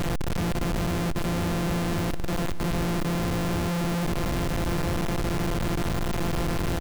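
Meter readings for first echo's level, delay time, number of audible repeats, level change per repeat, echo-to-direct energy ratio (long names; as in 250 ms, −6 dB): −15.5 dB, 537 ms, 2, −10.0 dB, −15.0 dB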